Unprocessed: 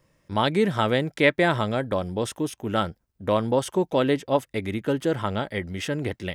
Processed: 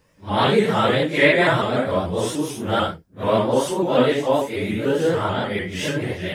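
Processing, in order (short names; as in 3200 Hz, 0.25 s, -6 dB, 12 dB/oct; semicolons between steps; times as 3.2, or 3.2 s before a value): phase scrambler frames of 0.2 s; low shelf 230 Hz -3 dB; shaped vibrato saw up 6.8 Hz, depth 100 cents; gain +5.5 dB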